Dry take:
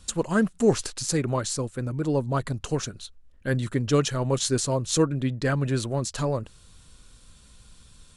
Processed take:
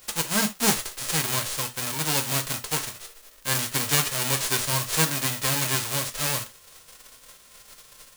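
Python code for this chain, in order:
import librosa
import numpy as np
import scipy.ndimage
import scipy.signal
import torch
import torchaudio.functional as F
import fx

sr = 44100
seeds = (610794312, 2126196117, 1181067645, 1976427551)

p1 = fx.envelope_flatten(x, sr, power=0.1)
p2 = 10.0 ** (-15.5 / 20.0) * (np.abs((p1 / 10.0 ** (-15.5 / 20.0) + 3.0) % 4.0 - 2.0) - 1.0)
p3 = p1 + F.gain(torch.from_numpy(p2), -11.5).numpy()
p4 = fx.rev_gated(p3, sr, seeds[0], gate_ms=100, shape='falling', drr_db=6.0)
y = F.gain(torch.from_numpy(p4), -3.5).numpy()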